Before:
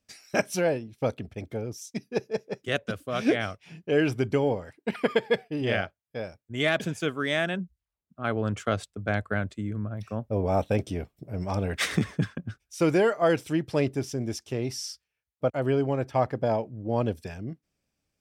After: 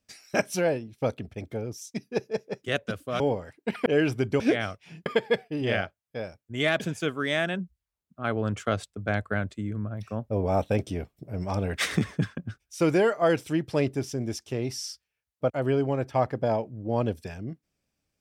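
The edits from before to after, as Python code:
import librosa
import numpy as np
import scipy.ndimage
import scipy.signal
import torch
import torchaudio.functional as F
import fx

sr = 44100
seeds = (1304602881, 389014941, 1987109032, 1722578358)

y = fx.edit(x, sr, fx.swap(start_s=3.2, length_s=0.66, other_s=4.4, other_length_s=0.66), tone=tone)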